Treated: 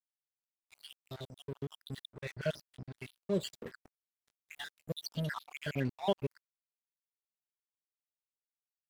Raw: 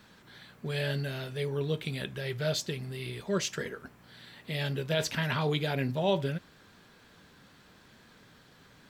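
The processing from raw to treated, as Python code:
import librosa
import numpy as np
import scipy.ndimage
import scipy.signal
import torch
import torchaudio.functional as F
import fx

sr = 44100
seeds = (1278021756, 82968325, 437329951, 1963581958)

y = fx.spec_dropout(x, sr, seeds[0], share_pct=71)
y = fx.lowpass(y, sr, hz=4300.0, slope=12, at=(2.11, 3.01))
y = np.sign(y) * np.maximum(np.abs(y) - 10.0 ** (-45.5 / 20.0), 0.0)
y = y * 10.0 ** (-1.0 / 20.0)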